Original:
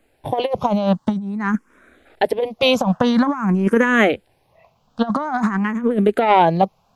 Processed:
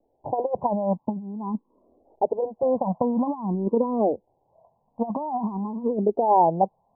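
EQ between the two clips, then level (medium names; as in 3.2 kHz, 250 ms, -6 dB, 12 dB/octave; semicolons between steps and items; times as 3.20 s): steep low-pass 1 kHz 96 dB/octave; bass shelf 230 Hz -10 dB; -3.0 dB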